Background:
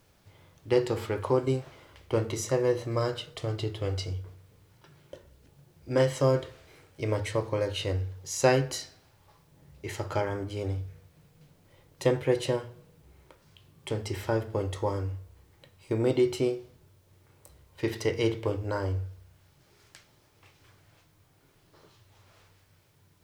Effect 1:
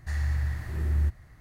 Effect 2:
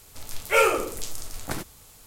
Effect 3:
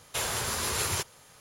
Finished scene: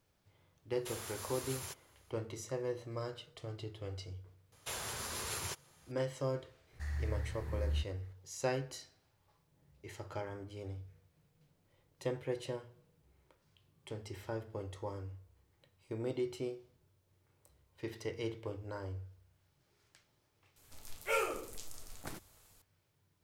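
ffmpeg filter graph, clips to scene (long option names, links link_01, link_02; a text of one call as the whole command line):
ffmpeg -i bed.wav -i cue0.wav -i cue1.wav -i cue2.wav -filter_complex "[3:a]asplit=2[link_01][link_02];[0:a]volume=-12.5dB[link_03];[link_01]highshelf=frequency=12000:gain=9,atrim=end=1.4,asetpts=PTS-STARTPTS,volume=-16.5dB,afade=type=in:duration=0.004:curve=hsin,afade=type=out:start_time=1.396:duration=0.004:curve=hsin,adelay=710[link_04];[link_02]atrim=end=1.4,asetpts=PTS-STARTPTS,volume=-10.5dB,afade=type=in:duration=0.004:curve=hsin,afade=type=out:start_time=1.396:duration=0.004:curve=hsin,adelay=4520[link_05];[1:a]atrim=end=1.4,asetpts=PTS-STARTPTS,volume=-10dB,afade=type=in:duration=0.004:curve=hsin,afade=type=out:start_time=1.396:duration=0.004:curve=hsin,adelay=6730[link_06];[2:a]atrim=end=2.06,asetpts=PTS-STARTPTS,volume=-14dB,afade=type=in:duration=0.004:curve=hsin,afade=type=out:start_time=2.056:duration=0.004:curve=hsin,adelay=20560[link_07];[link_03][link_04][link_05][link_06][link_07]amix=inputs=5:normalize=0" out.wav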